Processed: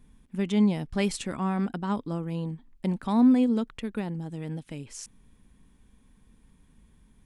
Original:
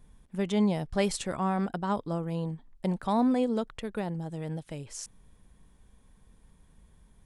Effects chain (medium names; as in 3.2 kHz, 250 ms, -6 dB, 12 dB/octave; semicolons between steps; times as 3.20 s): fifteen-band graphic EQ 250 Hz +8 dB, 630 Hz -5 dB, 2.5 kHz +4 dB; trim -1 dB